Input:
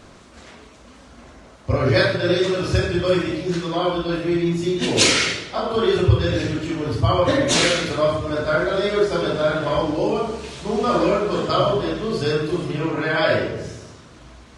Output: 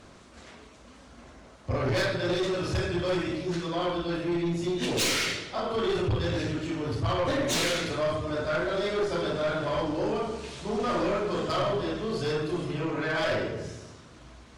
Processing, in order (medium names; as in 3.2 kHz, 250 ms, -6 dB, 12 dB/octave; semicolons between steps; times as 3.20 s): Chebyshev shaper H 4 -15 dB, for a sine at -1 dBFS; saturation -16.5 dBFS, distortion -10 dB; trim -5.5 dB